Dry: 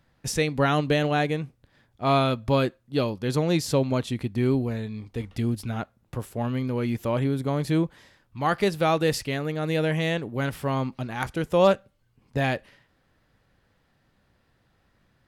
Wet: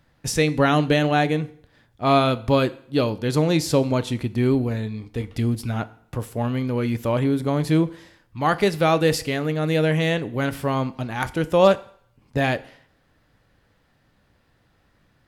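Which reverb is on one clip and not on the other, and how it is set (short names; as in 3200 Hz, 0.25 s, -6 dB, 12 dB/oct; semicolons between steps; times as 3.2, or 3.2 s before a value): FDN reverb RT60 0.62 s, low-frequency decay 0.85×, high-frequency decay 0.9×, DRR 13.5 dB; gain +3.5 dB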